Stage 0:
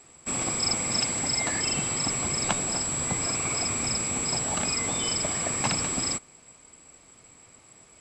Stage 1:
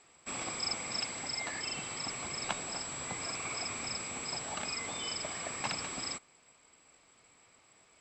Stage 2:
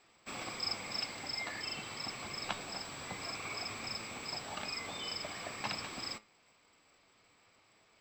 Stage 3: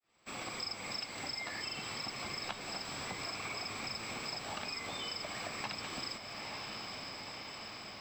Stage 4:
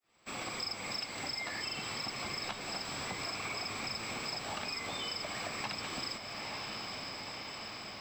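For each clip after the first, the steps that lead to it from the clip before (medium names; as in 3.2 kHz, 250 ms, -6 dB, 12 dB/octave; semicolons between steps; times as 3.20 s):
low-pass 5.6 kHz 12 dB/octave; bass shelf 410 Hz -10 dB; gain riding within 4 dB 2 s; trim -6 dB
median filter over 3 samples; resonant high shelf 6.9 kHz -7 dB, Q 1.5; flange 0.5 Hz, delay 9 ms, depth 1.6 ms, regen +76%; trim +2 dB
fade-in on the opening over 0.78 s; echo that smears into a reverb 938 ms, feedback 63%, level -11 dB; compression 4:1, threshold -47 dBFS, peak gain reduction 13.5 dB; trim +8 dB
saturation -28 dBFS, distortion -26 dB; trim +2.5 dB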